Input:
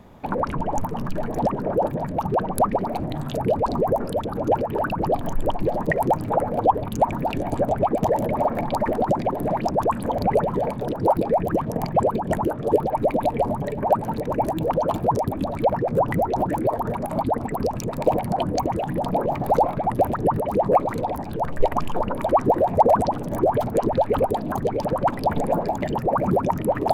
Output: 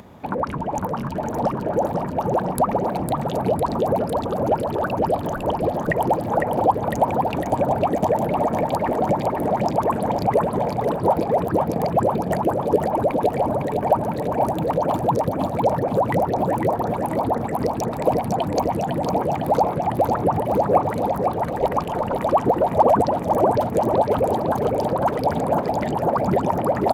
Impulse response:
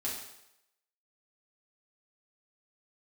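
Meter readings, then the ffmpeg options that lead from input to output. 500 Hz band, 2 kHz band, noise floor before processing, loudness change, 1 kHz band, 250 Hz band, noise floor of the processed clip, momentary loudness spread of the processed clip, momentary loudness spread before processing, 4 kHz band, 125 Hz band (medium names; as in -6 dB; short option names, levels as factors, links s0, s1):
+1.5 dB, +1.5 dB, -31 dBFS, +1.5 dB, +1.5 dB, +1.5 dB, -28 dBFS, 4 LU, 5 LU, +1.5 dB, +1.5 dB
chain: -filter_complex "[0:a]highpass=62,acompressor=mode=upward:threshold=0.0112:ratio=2.5,asplit=2[s0][s1];[s1]aecho=0:1:505|1010|1515|2020|2525|3030|3535|4040:0.562|0.332|0.196|0.115|0.0681|0.0402|0.0237|0.014[s2];[s0][s2]amix=inputs=2:normalize=0"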